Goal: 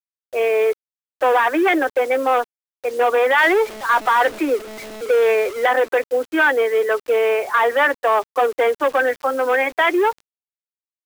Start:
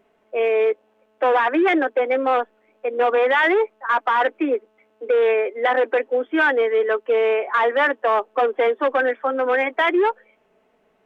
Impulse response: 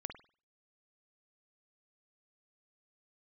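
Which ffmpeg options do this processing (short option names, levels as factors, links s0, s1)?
-filter_complex "[0:a]asettb=1/sr,asplit=3[s0][s1][s2];[s0]atrim=end=3.384[s3];[s1]atrim=start=3.38:end=5.66,asetpts=PTS-STARTPTS,afade=t=in:d=0.004:c=qsin,afade=t=out:st=2.276:d=0.004:c=qsin,aeval=exprs='val(0)+0.5*0.0299*sgn(val(0))':c=same[s4];[s2]atrim=start=5.656[s5];[s3][s4]acrossfade=d=0.004:c1=hsin:c2=qsin[s6];[s6][s5]acrossfade=d=0.004:c1=qsin:c2=hsin,equalizer=f=110:w=0.53:g=-7.5,acrusher=bits=6:mix=0:aa=0.000001,volume=1.33"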